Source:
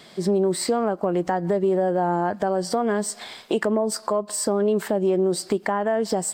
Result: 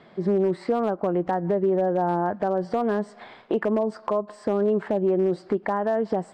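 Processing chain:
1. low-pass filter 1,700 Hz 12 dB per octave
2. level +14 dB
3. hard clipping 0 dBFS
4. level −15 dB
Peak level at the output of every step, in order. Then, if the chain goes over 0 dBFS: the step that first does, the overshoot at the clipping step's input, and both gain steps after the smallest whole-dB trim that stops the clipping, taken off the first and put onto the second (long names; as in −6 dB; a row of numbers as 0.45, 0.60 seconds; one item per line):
−10.0, +4.0, 0.0, −15.0 dBFS
step 2, 4.0 dB
step 2 +10 dB, step 4 −11 dB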